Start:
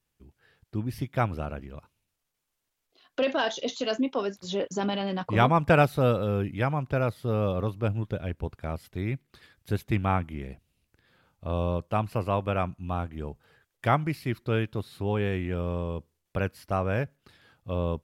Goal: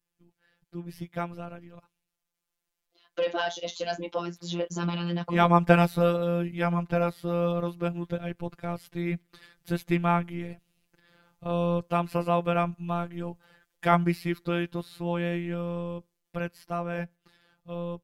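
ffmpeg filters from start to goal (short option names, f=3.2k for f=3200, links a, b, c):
-af "dynaudnorm=f=690:g=11:m=11.5dB,afftfilt=real='hypot(re,im)*cos(PI*b)':imag='0':win_size=1024:overlap=0.75,volume=-2dB"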